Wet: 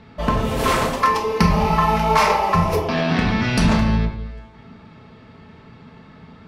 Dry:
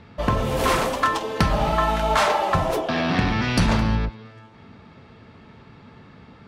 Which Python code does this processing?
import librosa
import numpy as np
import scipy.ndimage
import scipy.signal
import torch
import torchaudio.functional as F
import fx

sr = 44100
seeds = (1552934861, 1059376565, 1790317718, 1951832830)

y = fx.ripple_eq(x, sr, per_octave=0.84, db=8, at=(1.0, 2.93))
y = fx.room_shoebox(y, sr, seeds[0], volume_m3=550.0, walls='furnished', distance_m=1.5)